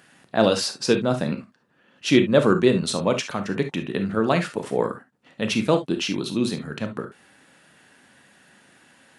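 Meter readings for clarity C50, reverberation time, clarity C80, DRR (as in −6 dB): 11.0 dB, non-exponential decay, 46.0 dB, 7.0 dB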